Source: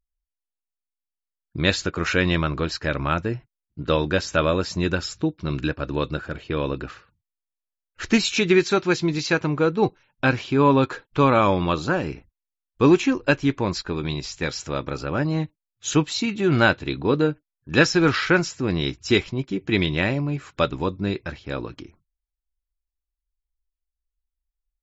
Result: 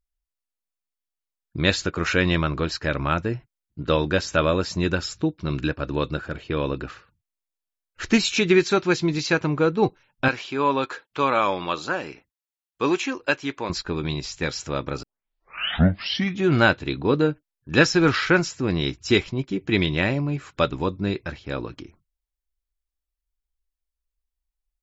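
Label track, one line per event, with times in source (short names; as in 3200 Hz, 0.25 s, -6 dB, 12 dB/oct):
10.280000	13.700000	HPF 680 Hz 6 dB/oct
15.030000	15.030000	tape start 1.44 s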